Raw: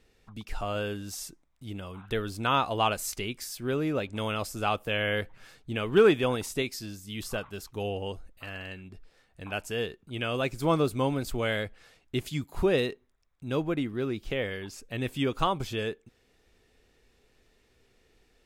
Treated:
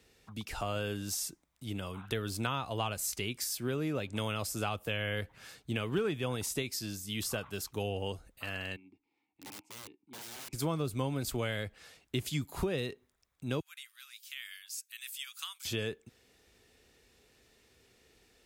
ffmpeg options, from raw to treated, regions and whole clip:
-filter_complex "[0:a]asettb=1/sr,asplit=3[a][b][c];[a]atrim=end=8.764[d];[b]atrim=start=8.76:end=10.53,asetpts=PTS-STARTPTS,afade=t=in:d=0.004:c=qsin,afade=t=out:st=1.766:d=0.004:c=qsin,asplit=3[e][f][g];[e]bandpass=f=300:t=q:w=8,volume=0dB[h];[f]bandpass=f=870:t=q:w=8,volume=-6dB[i];[g]bandpass=f=2.24k:t=q:w=8,volume=-9dB[j];[h][i][j]amix=inputs=3:normalize=0,aeval=exprs='(mod(168*val(0)+1,2)-1)/168':c=same[k];[c]atrim=start=10.526[l];[d][k]acrossfade=d=0.004:c1=hsin:c2=qsin[m];[m][l]acrossfade=d=0.004:c1=qsin:c2=hsin,asettb=1/sr,asplit=3[n][o][p];[n]atrim=end=13.604[q];[o]atrim=start=13.6:end=15.65,asetpts=PTS-STARTPTS,afade=t=in:d=0.004:c=qsin,afade=t=out:st=2.046:d=0.004:c=qsin,highpass=f=1.3k:w=0.5412,highpass=f=1.3k:w=1.3066,aderivative[r];[p]atrim=start=15.646[s];[q][r]acrossfade=d=0.004:c1=hsin:c2=qsin[t];[t][s]acrossfade=d=0.004:c1=qsin:c2=hsin,highpass=53,highshelf=f=3.8k:g=7,acrossover=split=140[u][v];[v]acompressor=threshold=-32dB:ratio=5[w];[u][w]amix=inputs=2:normalize=0"

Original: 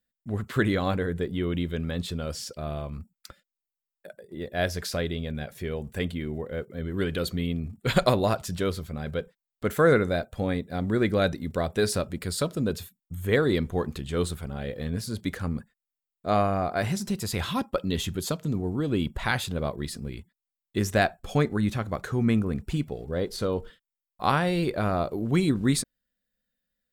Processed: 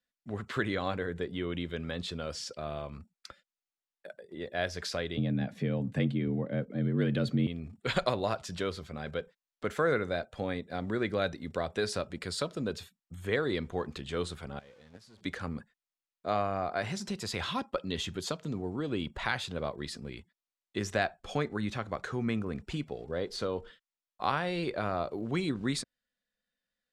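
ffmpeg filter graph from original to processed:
-filter_complex "[0:a]asettb=1/sr,asplit=3[a][b][c];[a]atrim=end=5.174[d];[b]atrim=start=5.17:end=7.47,asetpts=PTS-STARTPTS,afade=t=in:d=0.004:c=qsin,afade=t=out:st=2.296:d=0.004:c=qsin,bass=f=250:g=15,treble=f=4k:g=-5,afreqshift=52[e];[c]atrim=start=7.466[f];[d][e]acrossfade=d=0.004:c1=hsin:c2=qsin[g];[g][f]acrossfade=d=0.004:c1=qsin:c2=hsin,asettb=1/sr,asplit=3[h][i][j];[h]atrim=end=14.594[k];[i]atrim=start=14.59:end=15.21,asetpts=PTS-STARTPTS,afade=t=in:d=0.004:c=qsin,afade=t=out:st=0.616:d=0.004:c=qsin,aeval=exprs='val(0)+0.5*0.0224*sgn(val(0))':c=same,agate=range=-22dB:threshold=-24dB:ratio=16:release=100:detection=peak[l];[j]atrim=start=15.206[m];[k][l]acrossfade=d=0.004:c1=hsin:c2=qsin[n];[n][m]acrossfade=d=0.004:c1=qsin:c2=hsin,lowpass=6.1k,lowshelf=f=250:g=-11,acrossover=split=120[o][p];[p]acompressor=threshold=-34dB:ratio=1.5[q];[o][q]amix=inputs=2:normalize=0"

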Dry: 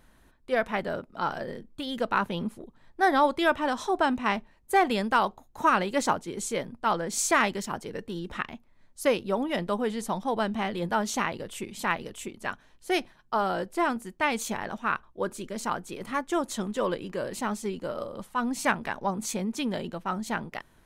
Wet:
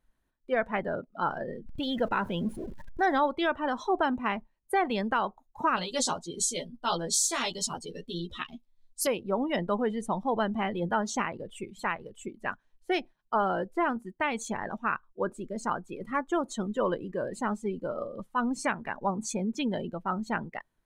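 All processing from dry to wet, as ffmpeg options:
-filter_complex "[0:a]asettb=1/sr,asplit=3[a][b][c];[a]atrim=end=1.664[d];[b]atrim=start=1.66:end=3.19,asetpts=PTS-STARTPTS,afade=t=in:d=0.004:c=qsin,afade=t=out:st=1.526:d=0.004:c=qsin,aeval=exprs='val(0)+0.5*0.02*sgn(val(0))':c=same,bandreject=f=1.2k:w=11[e];[c]atrim=start=3.186[f];[d][e]acrossfade=d=0.004:c1=hsin:c2=qsin[g];[g][f]acrossfade=d=0.004:c1=qsin:c2=hsin,asettb=1/sr,asplit=3[h][i][j];[h]atrim=end=5.764[k];[i]atrim=start=5.76:end=9.07,asetpts=PTS-STARTPTS,afade=t=in:d=0.004:c=qsin,afade=t=out:st=3.306:d=0.004:c=qsin,highshelf=f=2.7k:t=q:w=1.5:g=10.5,asplit=2[l][m];[m]adelay=12,volume=-2dB[n];[l][n]amix=inputs=2:normalize=0,atrim=end_sample=145971,flanger=delay=1:depth=4.2:regen=-77:speed=1.6:shape=sinusoidal[o];[j]atrim=start=9.066[p];[k][o]acrossfade=d=0.004:c1=hsin:c2=qsin[q];[q][p]acrossfade=d=0.004:c1=qsin:c2=hsin,asettb=1/sr,asplit=3[r][s][t];[r]atrim=end=11.604[u];[s]atrim=start=11.6:end=12.12,asetpts=PTS-STARTPTS,afade=t=in:d=0.004:c=qsin,afade=t=out:st=0.516:d=0.004:c=qsin,equalizer=f=250:t=o:w=0.57:g=-6,bandreject=f=4.9k:w=14[v];[t]atrim=start=12.116[w];[u][v]acrossfade=d=0.004:c1=hsin:c2=qsin[x];[x][w]acrossfade=d=0.004:c1=qsin:c2=hsin,afftdn=nr=19:nf=-37,alimiter=limit=-16.5dB:level=0:latency=1:release=376"

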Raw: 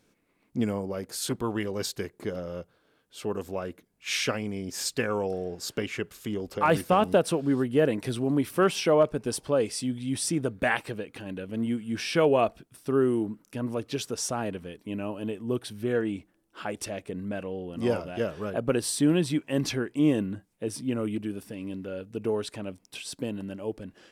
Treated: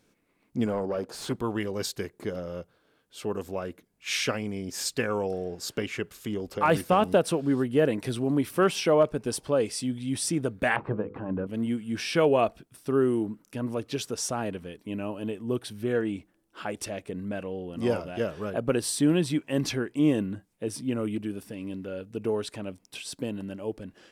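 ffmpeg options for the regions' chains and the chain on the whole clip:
-filter_complex "[0:a]asettb=1/sr,asplit=3[a][b][c];[a]atrim=end=0.664[d];[b]atrim=start=0.66:end=1.29,asetpts=PTS-STARTPTS,afade=t=in:d=0.004:c=qsin,afade=t=out:st=0.626:d=0.004:c=qsin,equalizer=f=2k:t=o:w=0.44:g=-12.5,asplit=2[e][f];[f]highpass=f=720:p=1,volume=17dB,asoftclip=type=tanh:threshold=-18.5dB[g];[e][g]amix=inputs=2:normalize=0,lowpass=f=1.2k:p=1,volume=-6dB[h];[c]atrim=start=1.286[i];[d][h]acrossfade=d=0.004:c1=hsin:c2=qsin[j];[j][i]acrossfade=d=0.004:c1=qsin:c2=hsin,asettb=1/sr,asplit=3[k][l][m];[k]atrim=end=10.764[n];[l]atrim=start=10.76:end=11.47,asetpts=PTS-STARTPTS,afade=t=in:d=0.004:c=qsin,afade=t=out:st=0.706:d=0.004:c=qsin,lowpass=f=1.1k:t=q:w=2.7,lowshelf=f=370:g=9,bandreject=f=50:t=h:w=6,bandreject=f=100:t=h:w=6,bandreject=f=150:t=h:w=6,bandreject=f=200:t=h:w=6,bandreject=f=250:t=h:w=6,bandreject=f=300:t=h:w=6,bandreject=f=350:t=h:w=6,bandreject=f=400:t=h:w=6,bandreject=f=450:t=h:w=6,bandreject=f=500:t=h:w=6[o];[m]atrim=start=11.466[p];[n][o]acrossfade=d=0.004:c1=hsin:c2=qsin[q];[q][p]acrossfade=d=0.004:c1=qsin:c2=hsin"

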